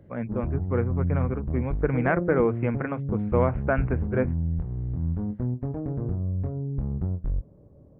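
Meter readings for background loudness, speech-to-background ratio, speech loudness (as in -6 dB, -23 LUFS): -30.0 LUFS, 2.0 dB, -28.0 LUFS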